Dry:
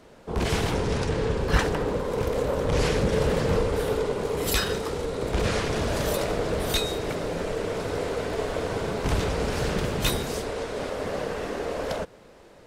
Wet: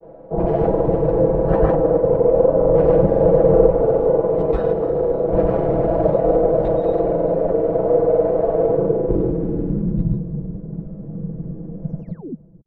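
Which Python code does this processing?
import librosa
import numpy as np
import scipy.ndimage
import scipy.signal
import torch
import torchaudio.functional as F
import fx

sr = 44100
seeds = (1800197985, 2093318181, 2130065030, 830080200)

y = x + 0.89 * np.pad(x, (int(6.1 * sr / 1000.0), 0))[:len(x)]
y = fx.echo_thinned(y, sr, ms=142, feedback_pct=51, hz=170.0, wet_db=-9.5)
y = fx.spec_paint(y, sr, seeds[0], shape='fall', start_s=11.91, length_s=0.42, low_hz=220.0, high_hz=11000.0, level_db=-24.0)
y = fx.granulator(y, sr, seeds[1], grain_ms=100.0, per_s=20.0, spray_ms=100.0, spread_st=0)
y = fx.filter_sweep_lowpass(y, sr, from_hz=630.0, to_hz=170.0, start_s=8.59, end_s=10.22, q=2.6)
y = F.gain(torch.from_numpy(y), 4.5).numpy()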